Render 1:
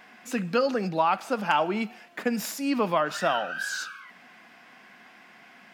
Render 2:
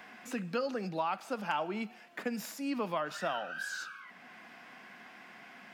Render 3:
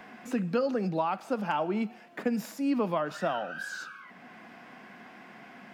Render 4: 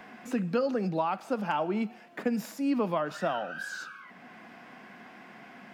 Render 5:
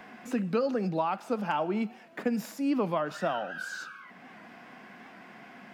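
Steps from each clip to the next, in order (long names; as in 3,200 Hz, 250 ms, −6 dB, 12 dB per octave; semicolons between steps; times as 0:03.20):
multiband upward and downward compressor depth 40%; level −9 dB
tilt shelving filter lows +5 dB, about 930 Hz; level +3.5 dB
no processing that can be heard
wow of a warped record 78 rpm, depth 100 cents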